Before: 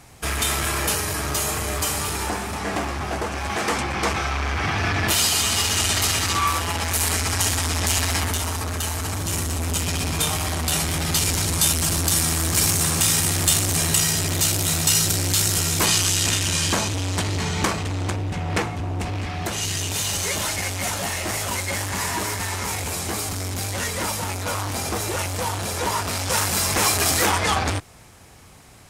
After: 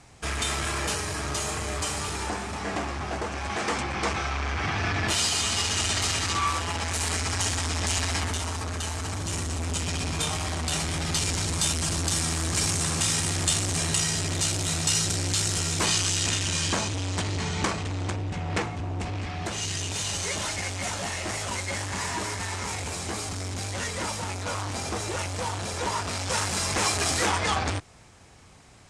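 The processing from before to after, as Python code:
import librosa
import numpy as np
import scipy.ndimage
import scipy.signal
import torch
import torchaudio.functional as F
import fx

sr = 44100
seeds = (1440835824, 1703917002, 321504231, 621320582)

y = scipy.signal.sosfilt(scipy.signal.butter(4, 8900.0, 'lowpass', fs=sr, output='sos'), x)
y = y * librosa.db_to_amplitude(-4.5)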